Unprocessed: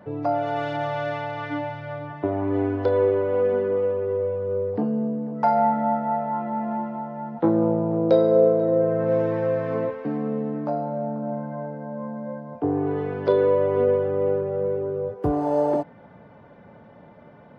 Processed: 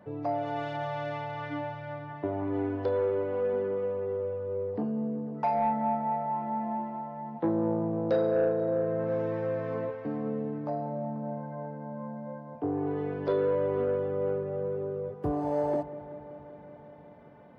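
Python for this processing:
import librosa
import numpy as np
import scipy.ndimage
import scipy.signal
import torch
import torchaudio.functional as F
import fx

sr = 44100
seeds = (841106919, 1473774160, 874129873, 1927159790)

y = fx.notch(x, sr, hz=1400.0, q=17.0)
y = 10.0 ** (-11.5 / 20.0) * np.tanh(y / 10.0 ** (-11.5 / 20.0))
y = fx.echo_wet_lowpass(y, sr, ms=190, feedback_pct=79, hz=2300.0, wet_db=-16.0)
y = y * 10.0 ** (-6.5 / 20.0)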